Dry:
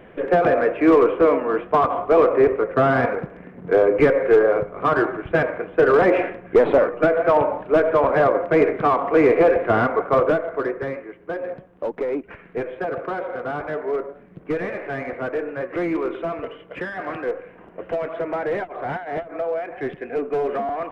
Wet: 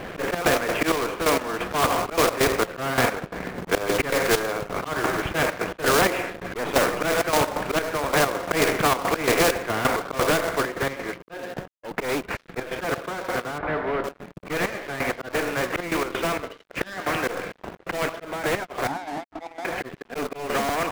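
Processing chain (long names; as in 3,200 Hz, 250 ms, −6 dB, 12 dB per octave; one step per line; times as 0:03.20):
volume swells 108 ms
gate pattern "xxx.x.xx...x..x" 131 BPM −12 dB
in parallel at −10.5 dB: log-companded quantiser 4 bits
0:18.87–0:19.65: on the sum: pair of resonant band-passes 480 Hz, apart 1.5 octaves
dead-zone distortion −50 dBFS
0:13.58–0:14.04: high-frequency loss of the air 460 metres
every bin compressed towards the loudest bin 2 to 1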